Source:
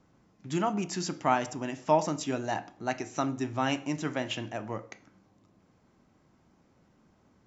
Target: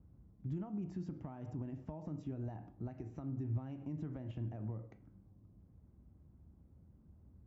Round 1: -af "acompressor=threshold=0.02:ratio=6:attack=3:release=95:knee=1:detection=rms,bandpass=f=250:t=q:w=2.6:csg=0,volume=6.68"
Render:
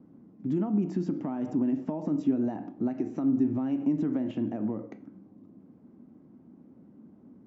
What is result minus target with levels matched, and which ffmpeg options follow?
125 Hz band -11.0 dB
-af "acompressor=threshold=0.02:ratio=6:attack=3:release=95:knee=1:detection=rms,bandpass=f=63:t=q:w=2.6:csg=0,volume=6.68"

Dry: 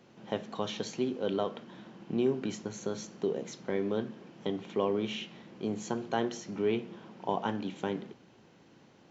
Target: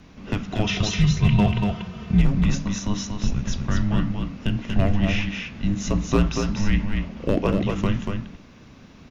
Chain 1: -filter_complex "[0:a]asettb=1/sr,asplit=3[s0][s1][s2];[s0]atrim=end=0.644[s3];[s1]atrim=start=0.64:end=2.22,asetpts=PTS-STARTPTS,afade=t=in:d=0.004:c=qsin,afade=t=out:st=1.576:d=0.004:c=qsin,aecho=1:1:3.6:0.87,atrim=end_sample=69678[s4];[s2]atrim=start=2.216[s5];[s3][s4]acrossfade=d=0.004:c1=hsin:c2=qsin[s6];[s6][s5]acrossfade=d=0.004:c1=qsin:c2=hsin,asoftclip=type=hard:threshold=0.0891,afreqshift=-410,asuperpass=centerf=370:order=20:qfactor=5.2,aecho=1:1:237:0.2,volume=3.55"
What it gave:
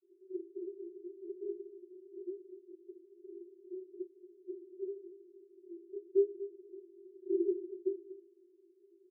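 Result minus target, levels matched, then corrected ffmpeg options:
500 Hz band +9.5 dB; echo-to-direct -9.5 dB
-filter_complex "[0:a]asettb=1/sr,asplit=3[s0][s1][s2];[s0]atrim=end=0.644[s3];[s1]atrim=start=0.64:end=2.22,asetpts=PTS-STARTPTS,afade=t=in:d=0.004:c=qsin,afade=t=out:st=1.576:d=0.004:c=qsin,aecho=1:1:3.6:0.87,atrim=end_sample=69678[s4];[s2]atrim=start=2.216[s5];[s3][s4]acrossfade=d=0.004:c1=hsin:c2=qsin[s6];[s6][s5]acrossfade=d=0.004:c1=qsin:c2=hsin,asoftclip=type=hard:threshold=0.0891,afreqshift=-410,aecho=1:1:237:0.596,volume=3.55"

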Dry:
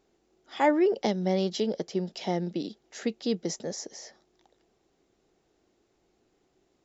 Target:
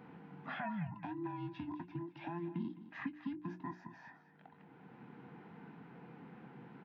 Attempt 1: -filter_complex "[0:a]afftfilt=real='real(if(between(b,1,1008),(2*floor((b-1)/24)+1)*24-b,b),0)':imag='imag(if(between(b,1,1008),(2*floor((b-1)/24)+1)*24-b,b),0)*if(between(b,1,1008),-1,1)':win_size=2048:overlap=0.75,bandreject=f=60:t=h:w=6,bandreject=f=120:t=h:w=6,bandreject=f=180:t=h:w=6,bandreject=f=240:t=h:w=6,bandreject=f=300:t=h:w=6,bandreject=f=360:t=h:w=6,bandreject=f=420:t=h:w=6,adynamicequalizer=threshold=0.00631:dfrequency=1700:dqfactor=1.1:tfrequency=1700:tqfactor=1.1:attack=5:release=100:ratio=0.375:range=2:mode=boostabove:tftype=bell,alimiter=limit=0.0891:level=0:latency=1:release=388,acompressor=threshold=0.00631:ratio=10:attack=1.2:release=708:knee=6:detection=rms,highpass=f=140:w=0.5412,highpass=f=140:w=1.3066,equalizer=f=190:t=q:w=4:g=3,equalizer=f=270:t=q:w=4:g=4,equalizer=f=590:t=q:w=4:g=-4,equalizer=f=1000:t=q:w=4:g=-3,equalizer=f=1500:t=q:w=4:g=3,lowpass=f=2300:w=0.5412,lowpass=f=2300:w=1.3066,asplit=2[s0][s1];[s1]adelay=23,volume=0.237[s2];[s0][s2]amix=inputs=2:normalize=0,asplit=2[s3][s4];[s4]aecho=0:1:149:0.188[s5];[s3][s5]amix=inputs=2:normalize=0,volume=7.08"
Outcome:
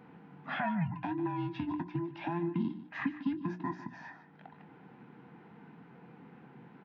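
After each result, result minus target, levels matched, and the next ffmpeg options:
compression: peak gain reduction -7.5 dB; echo 61 ms early
-filter_complex "[0:a]afftfilt=real='real(if(between(b,1,1008),(2*floor((b-1)/24)+1)*24-b,b),0)':imag='imag(if(between(b,1,1008),(2*floor((b-1)/24)+1)*24-b,b),0)*if(between(b,1,1008),-1,1)':win_size=2048:overlap=0.75,bandreject=f=60:t=h:w=6,bandreject=f=120:t=h:w=6,bandreject=f=180:t=h:w=6,bandreject=f=240:t=h:w=6,bandreject=f=300:t=h:w=6,bandreject=f=360:t=h:w=6,bandreject=f=420:t=h:w=6,adynamicequalizer=threshold=0.00631:dfrequency=1700:dqfactor=1.1:tfrequency=1700:tqfactor=1.1:attack=5:release=100:ratio=0.375:range=2:mode=boostabove:tftype=bell,alimiter=limit=0.0891:level=0:latency=1:release=388,acompressor=threshold=0.00237:ratio=10:attack=1.2:release=708:knee=6:detection=rms,highpass=f=140:w=0.5412,highpass=f=140:w=1.3066,equalizer=f=190:t=q:w=4:g=3,equalizer=f=270:t=q:w=4:g=4,equalizer=f=590:t=q:w=4:g=-4,equalizer=f=1000:t=q:w=4:g=-3,equalizer=f=1500:t=q:w=4:g=3,lowpass=f=2300:w=0.5412,lowpass=f=2300:w=1.3066,asplit=2[s0][s1];[s1]adelay=23,volume=0.237[s2];[s0][s2]amix=inputs=2:normalize=0,asplit=2[s3][s4];[s4]aecho=0:1:149:0.188[s5];[s3][s5]amix=inputs=2:normalize=0,volume=7.08"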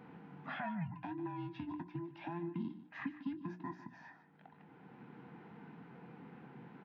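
echo 61 ms early
-filter_complex "[0:a]afftfilt=real='real(if(between(b,1,1008),(2*floor((b-1)/24)+1)*24-b,b),0)':imag='imag(if(between(b,1,1008),(2*floor((b-1)/24)+1)*24-b,b),0)*if(between(b,1,1008),-1,1)':win_size=2048:overlap=0.75,bandreject=f=60:t=h:w=6,bandreject=f=120:t=h:w=6,bandreject=f=180:t=h:w=6,bandreject=f=240:t=h:w=6,bandreject=f=300:t=h:w=6,bandreject=f=360:t=h:w=6,bandreject=f=420:t=h:w=6,adynamicequalizer=threshold=0.00631:dfrequency=1700:dqfactor=1.1:tfrequency=1700:tqfactor=1.1:attack=5:release=100:ratio=0.375:range=2:mode=boostabove:tftype=bell,alimiter=limit=0.0891:level=0:latency=1:release=388,acompressor=threshold=0.00237:ratio=10:attack=1.2:release=708:knee=6:detection=rms,highpass=f=140:w=0.5412,highpass=f=140:w=1.3066,equalizer=f=190:t=q:w=4:g=3,equalizer=f=270:t=q:w=4:g=4,equalizer=f=590:t=q:w=4:g=-4,equalizer=f=1000:t=q:w=4:g=-3,equalizer=f=1500:t=q:w=4:g=3,lowpass=f=2300:w=0.5412,lowpass=f=2300:w=1.3066,asplit=2[s0][s1];[s1]adelay=23,volume=0.237[s2];[s0][s2]amix=inputs=2:normalize=0,asplit=2[s3][s4];[s4]aecho=0:1:210:0.188[s5];[s3][s5]amix=inputs=2:normalize=0,volume=7.08"

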